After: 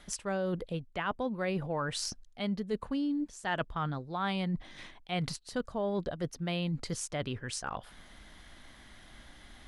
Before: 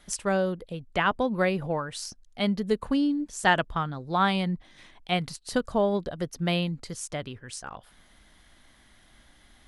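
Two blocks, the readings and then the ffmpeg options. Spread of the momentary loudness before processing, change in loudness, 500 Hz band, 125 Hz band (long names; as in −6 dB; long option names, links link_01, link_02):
13 LU, −7.0 dB, −7.0 dB, −4.0 dB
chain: -af "highshelf=frequency=10000:gain=-9.5,areverse,acompressor=threshold=-36dB:ratio=5,areverse,volume=4.5dB"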